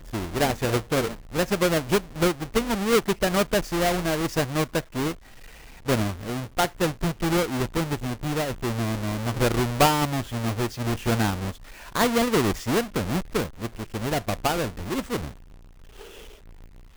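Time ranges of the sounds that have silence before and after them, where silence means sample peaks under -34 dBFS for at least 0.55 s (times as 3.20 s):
5.87–15.29 s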